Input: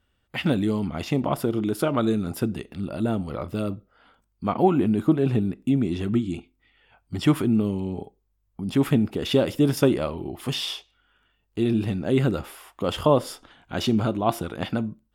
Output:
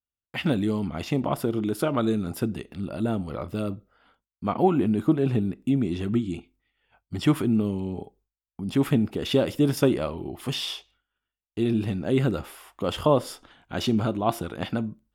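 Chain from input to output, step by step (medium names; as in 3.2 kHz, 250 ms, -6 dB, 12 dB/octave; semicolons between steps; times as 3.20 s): expander -53 dBFS; trim -1.5 dB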